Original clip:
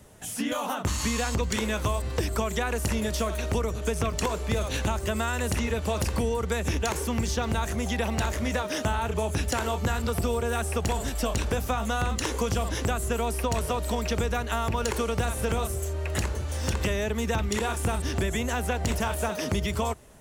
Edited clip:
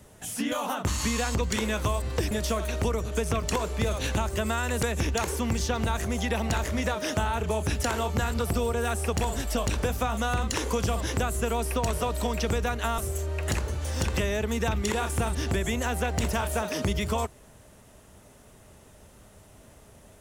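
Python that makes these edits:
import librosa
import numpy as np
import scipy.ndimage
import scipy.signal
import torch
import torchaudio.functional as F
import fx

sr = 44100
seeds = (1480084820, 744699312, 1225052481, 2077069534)

y = fx.edit(x, sr, fx.cut(start_s=2.31, length_s=0.7),
    fx.cut(start_s=5.53, length_s=0.98),
    fx.cut(start_s=14.66, length_s=0.99), tone=tone)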